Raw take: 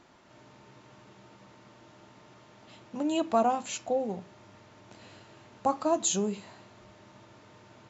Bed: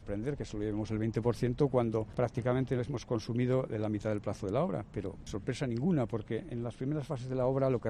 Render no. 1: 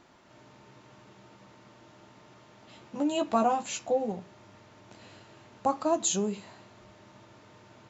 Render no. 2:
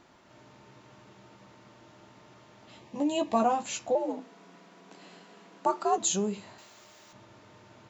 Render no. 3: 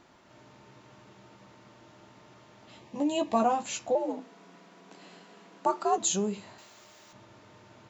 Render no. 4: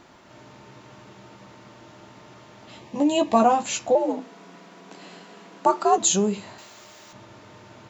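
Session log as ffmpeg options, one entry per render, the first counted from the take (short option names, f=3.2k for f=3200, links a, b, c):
-filter_complex "[0:a]asettb=1/sr,asplit=3[a][b][c];[a]atrim=end=2.744[d];[b]atrim=start=2.74:end=4.12,asetpts=PTS-STARTPTS,afade=t=in:d=0.004:c=qsin,afade=t=out:st=1.376:d=0.004:c=qsin,asplit=2[e][f];[f]adelay=14,volume=-5.5dB[g];[e][g]amix=inputs=2:normalize=0,atrim=end_sample=60858[h];[c]atrim=start=4.116[i];[d][h]acrossfade=d=0.004:c1=hsin:c2=qsin[j];[j][i]acrossfade=d=0.004:c1=qsin:c2=hsin"
-filter_complex "[0:a]asettb=1/sr,asplit=3[a][b][c];[a]atrim=end=2.794[d];[b]atrim=start=2.79:end=3.4,asetpts=PTS-STARTPTS,afade=t=in:d=0.004:c=qsin,afade=t=out:st=0.606:d=0.004:c=qsin,asuperstop=centerf=1400:order=4:qfactor=3.3[e];[c]atrim=start=3.396[f];[d][e]acrossfade=d=0.004:c1=hsin:c2=qsin[g];[g][f]acrossfade=d=0.004:c1=qsin:c2=hsin,asettb=1/sr,asplit=3[h][i][j];[h]atrim=end=3.954[k];[i]atrim=start=3.95:end=5.98,asetpts=PTS-STARTPTS,afade=t=in:d=0.004:c=qsin,afade=t=out:st=2.026:d=0.004:c=qsin,afreqshift=77[l];[j]atrim=start=5.976[m];[k][l]acrossfade=d=0.004:c1=hsin:c2=qsin[n];[n][m]acrossfade=d=0.004:c1=qsin:c2=hsin,asettb=1/sr,asplit=3[o][p][q];[o]atrim=end=6.584[r];[p]atrim=start=6.58:end=7.13,asetpts=PTS-STARTPTS,afade=t=in:d=0.004:c=qsin,afade=t=out:st=0.546:d=0.004:c=qsin,aemphasis=mode=production:type=riaa[s];[q]atrim=start=7.126[t];[r][s]acrossfade=d=0.004:c1=hsin:c2=qsin[u];[u][t]acrossfade=d=0.004:c1=qsin:c2=hsin"
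-af anull
-af "volume=7.5dB"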